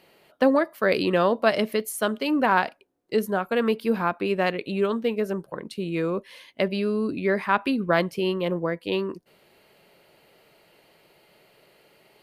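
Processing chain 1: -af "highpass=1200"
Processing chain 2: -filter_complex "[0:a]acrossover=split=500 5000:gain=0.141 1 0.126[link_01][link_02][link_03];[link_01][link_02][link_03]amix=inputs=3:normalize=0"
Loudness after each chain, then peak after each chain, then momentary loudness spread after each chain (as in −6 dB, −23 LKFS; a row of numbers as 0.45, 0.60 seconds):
−32.0, −28.5 LKFS; −9.5, −8.0 dBFS; 13, 11 LU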